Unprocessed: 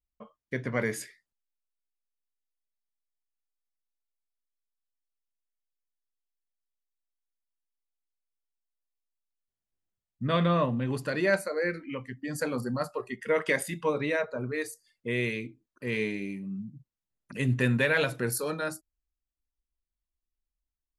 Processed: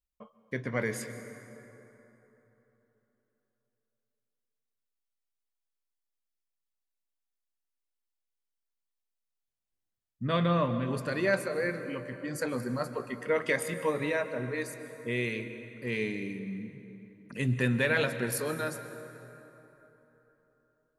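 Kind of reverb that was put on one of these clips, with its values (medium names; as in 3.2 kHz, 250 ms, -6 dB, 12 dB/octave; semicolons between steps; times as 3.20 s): plate-style reverb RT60 3.6 s, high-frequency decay 0.55×, pre-delay 115 ms, DRR 10 dB; trim -2 dB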